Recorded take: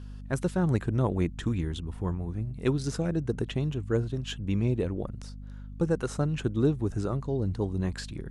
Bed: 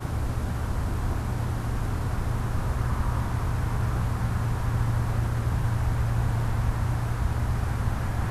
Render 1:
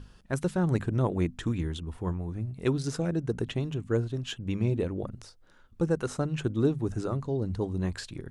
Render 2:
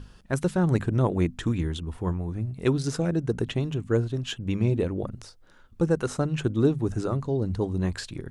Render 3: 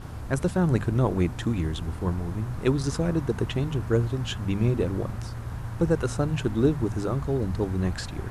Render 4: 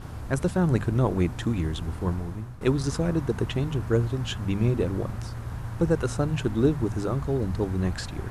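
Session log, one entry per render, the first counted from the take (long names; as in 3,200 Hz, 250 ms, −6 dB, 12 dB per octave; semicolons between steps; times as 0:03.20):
mains-hum notches 50/100/150/200/250 Hz
level +3.5 dB
mix in bed −8.5 dB
0:02.13–0:02.61: fade out linear, to −13 dB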